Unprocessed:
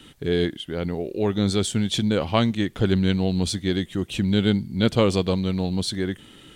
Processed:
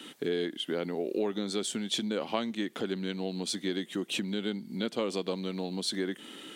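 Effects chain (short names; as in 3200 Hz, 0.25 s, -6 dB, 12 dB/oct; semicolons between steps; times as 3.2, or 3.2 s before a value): compressor 6:1, threshold -29 dBFS, peak gain reduction 15 dB; HPF 220 Hz 24 dB/oct; gain +2.5 dB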